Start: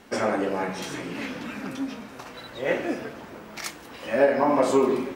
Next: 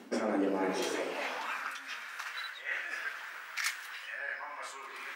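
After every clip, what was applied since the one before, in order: reverse; compression 8:1, threshold -31 dBFS, peak gain reduction 16.5 dB; reverse; high-pass sweep 250 Hz -> 1.6 kHz, 0.56–1.81 s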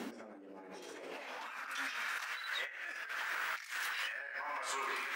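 compressor with a negative ratio -46 dBFS, ratio -1; trim +2 dB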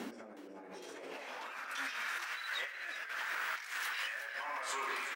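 frequency-shifting echo 367 ms, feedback 35%, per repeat +77 Hz, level -11 dB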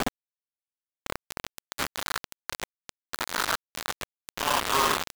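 low-pass 1.3 kHz 24 dB/octave; companded quantiser 2-bit; trim +8.5 dB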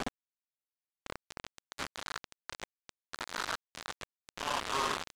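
low-pass 8.2 kHz 12 dB/octave; trim -8.5 dB

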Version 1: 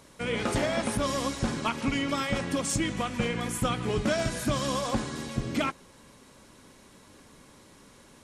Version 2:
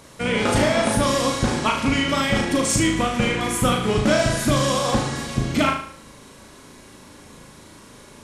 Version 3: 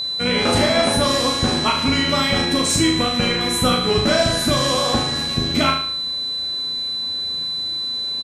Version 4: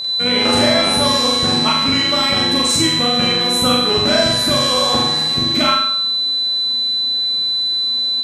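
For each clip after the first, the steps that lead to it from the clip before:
flutter echo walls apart 6.4 m, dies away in 0.54 s; trim +7 dB
doubling 12 ms -5 dB; whistle 4 kHz -22 dBFS
bass shelf 110 Hz -8.5 dB; flutter echo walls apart 7.8 m, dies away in 0.62 s

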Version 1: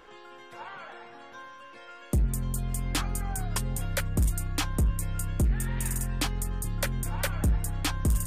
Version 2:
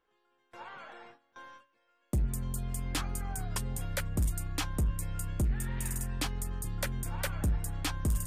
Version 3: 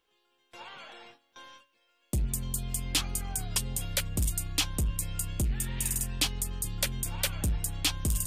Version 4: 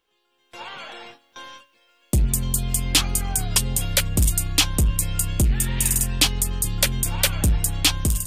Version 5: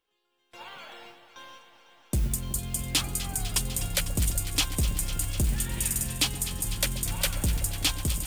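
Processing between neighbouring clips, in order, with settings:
gate with hold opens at -36 dBFS; trim -4.5 dB
resonant high shelf 2.2 kHz +8 dB, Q 1.5
level rider gain up to 8 dB; trim +2 dB
echo whose repeats swap between lows and highs 125 ms, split 920 Hz, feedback 90%, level -11.5 dB; modulation noise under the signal 22 dB; trim -7.5 dB

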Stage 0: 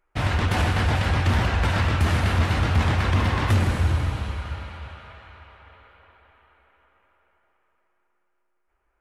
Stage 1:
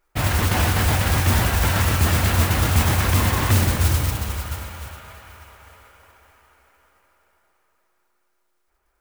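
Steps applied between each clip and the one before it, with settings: modulation noise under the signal 10 dB; trim +2 dB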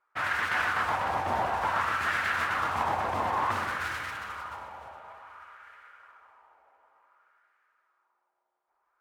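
LFO band-pass sine 0.56 Hz 790–1600 Hz; trim +2.5 dB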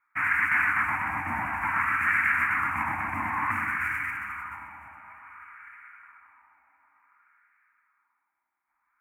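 FFT filter 110 Hz 0 dB, 300 Hz +4 dB, 430 Hz -28 dB, 920 Hz -2 dB, 1.5 kHz +3 dB, 2.3 kHz +11 dB, 3.6 kHz -30 dB, 7.6 kHz -6 dB, 11 kHz +1 dB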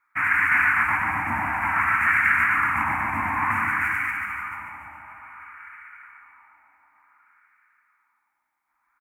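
feedback delay 143 ms, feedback 52%, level -6.5 dB; trim +3.5 dB

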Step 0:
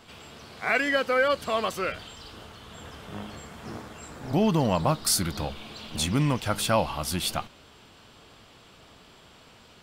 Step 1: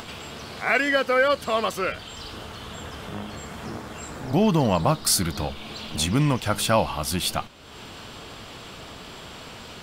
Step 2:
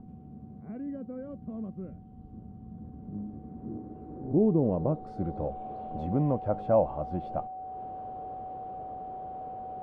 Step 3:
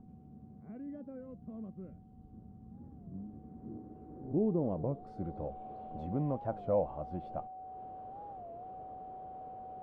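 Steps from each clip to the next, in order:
upward compressor, threshold -33 dBFS; trim +3 dB
whistle 750 Hz -32 dBFS; low-pass sweep 210 Hz -> 590 Hz, 2.69–5.65 s; trim -7 dB
warped record 33 1/3 rpm, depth 160 cents; trim -7 dB

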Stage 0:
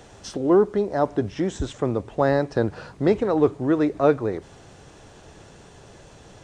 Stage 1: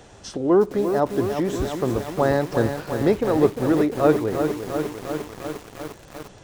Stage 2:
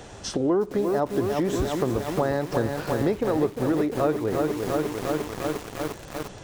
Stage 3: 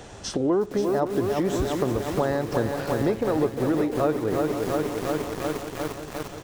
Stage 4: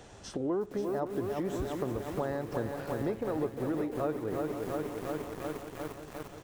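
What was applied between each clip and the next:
bit-crushed delay 351 ms, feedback 80%, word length 6-bit, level -7 dB
compression 4:1, threshold -26 dBFS, peak gain reduction 13 dB; trim +4.5 dB
delay 526 ms -11 dB
dynamic bell 5 kHz, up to -5 dB, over -48 dBFS, Q 0.83; trim -9 dB

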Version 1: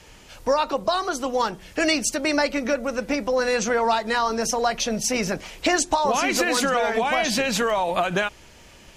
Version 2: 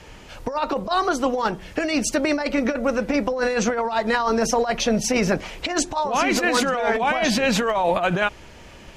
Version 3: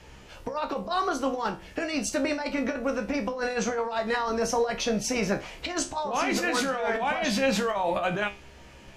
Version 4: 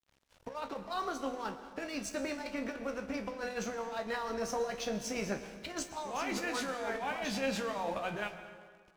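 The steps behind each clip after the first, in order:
treble shelf 4 kHz -10 dB; compressor with a negative ratio -24 dBFS, ratio -0.5; trim +4 dB
feedback comb 67 Hz, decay 0.28 s, harmonics all, mix 80%
crossover distortion -43 dBFS; reverberation RT60 1.7 s, pre-delay 102 ms, DRR 10.5 dB; trim -8.5 dB

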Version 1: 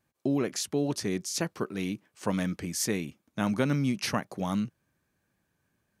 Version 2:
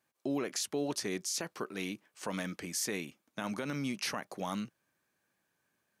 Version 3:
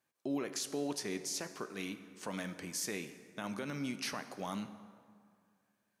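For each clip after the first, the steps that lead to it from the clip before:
high-pass 500 Hz 6 dB/octave; peak limiter -24.5 dBFS, peak gain reduction 9.5 dB
plate-style reverb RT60 2.1 s, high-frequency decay 0.6×, DRR 10 dB; trim -3.5 dB

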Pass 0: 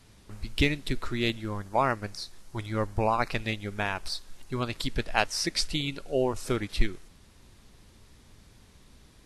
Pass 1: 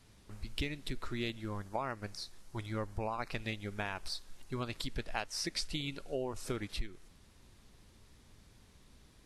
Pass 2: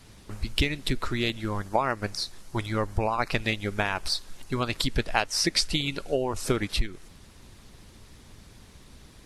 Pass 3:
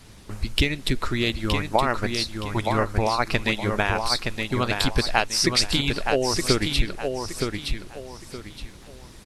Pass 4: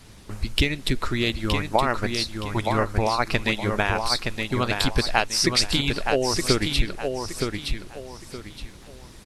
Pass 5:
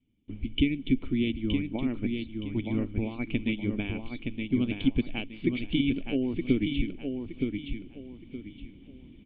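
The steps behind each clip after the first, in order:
compression 6:1, threshold -27 dBFS, peak gain reduction 12.5 dB; trim -5.5 dB
harmonic-percussive split percussive +5 dB; trim +8 dB
feedback delay 919 ms, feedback 29%, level -5 dB; trim +3.5 dB
no audible change
gate with hold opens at -36 dBFS; cascade formant filter i; trim +5.5 dB

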